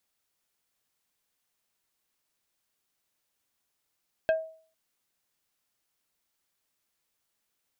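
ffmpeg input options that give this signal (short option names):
-f lavfi -i "aevalsrc='0.119*pow(10,-3*t/0.46)*sin(2*PI*642*t)+0.0501*pow(10,-3*t/0.153)*sin(2*PI*1605*t)+0.0211*pow(10,-3*t/0.087)*sin(2*PI*2568*t)+0.00891*pow(10,-3*t/0.067)*sin(2*PI*3210*t)+0.00376*pow(10,-3*t/0.049)*sin(2*PI*4173*t)':d=0.45:s=44100"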